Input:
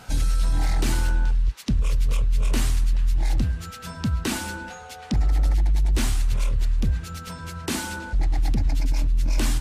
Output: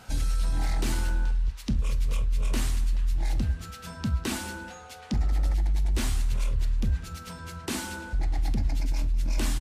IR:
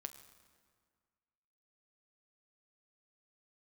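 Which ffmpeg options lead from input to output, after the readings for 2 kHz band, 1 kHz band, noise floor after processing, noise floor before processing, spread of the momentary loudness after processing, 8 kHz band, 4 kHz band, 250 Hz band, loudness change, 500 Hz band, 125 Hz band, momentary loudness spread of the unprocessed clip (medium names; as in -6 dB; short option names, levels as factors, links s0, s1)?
-4.5 dB, -4.5 dB, -44 dBFS, -41 dBFS, 7 LU, -4.5 dB, -4.0 dB, -4.0 dB, -4.5 dB, -4.0 dB, -4.5 dB, 9 LU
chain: -filter_complex "[0:a]aecho=1:1:200:0.1[s0];[1:a]atrim=start_sample=2205,atrim=end_sample=3087[s1];[s0][s1]afir=irnorm=-1:irlink=0"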